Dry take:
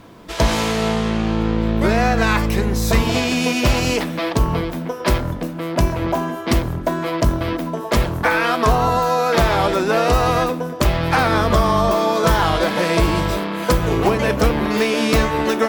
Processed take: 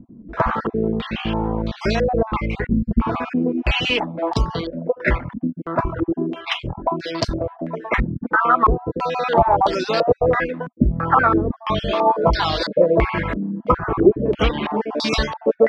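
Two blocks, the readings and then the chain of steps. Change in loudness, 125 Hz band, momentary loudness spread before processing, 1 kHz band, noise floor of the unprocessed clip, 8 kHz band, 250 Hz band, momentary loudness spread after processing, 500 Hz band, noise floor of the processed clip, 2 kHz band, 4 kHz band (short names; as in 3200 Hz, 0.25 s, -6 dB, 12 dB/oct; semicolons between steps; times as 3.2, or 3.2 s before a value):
-2.0 dB, -5.0 dB, 6 LU, -0.5 dB, -28 dBFS, under -10 dB, -2.0 dB, 8 LU, -0.5 dB, -45 dBFS, -3.0 dB, -2.5 dB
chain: random spectral dropouts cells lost 29%; reverb removal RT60 0.86 s; stepped low-pass 3 Hz 240–4600 Hz; gain -2 dB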